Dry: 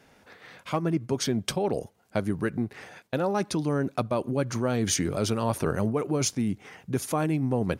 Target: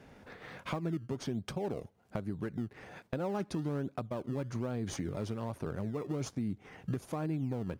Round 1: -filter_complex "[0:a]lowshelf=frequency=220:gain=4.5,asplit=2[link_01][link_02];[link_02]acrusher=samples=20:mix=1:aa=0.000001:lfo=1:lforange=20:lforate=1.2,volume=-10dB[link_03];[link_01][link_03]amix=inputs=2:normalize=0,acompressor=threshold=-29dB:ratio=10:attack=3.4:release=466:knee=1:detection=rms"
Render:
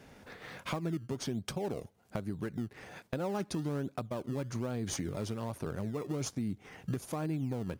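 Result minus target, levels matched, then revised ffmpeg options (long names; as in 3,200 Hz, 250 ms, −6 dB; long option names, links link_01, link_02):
8,000 Hz band +6.0 dB
-filter_complex "[0:a]lowshelf=frequency=220:gain=4.5,asplit=2[link_01][link_02];[link_02]acrusher=samples=20:mix=1:aa=0.000001:lfo=1:lforange=20:lforate=1.2,volume=-10dB[link_03];[link_01][link_03]amix=inputs=2:normalize=0,acompressor=threshold=-29dB:ratio=10:attack=3.4:release=466:knee=1:detection=rms,highshelf=frequency=4000:gain=-8.5"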